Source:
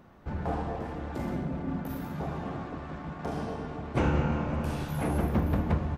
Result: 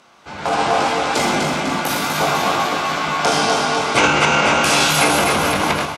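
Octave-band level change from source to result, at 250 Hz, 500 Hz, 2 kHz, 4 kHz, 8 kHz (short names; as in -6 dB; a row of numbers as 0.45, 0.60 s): +8.0, +15.5, +24.5, +31.0, +32.0 dB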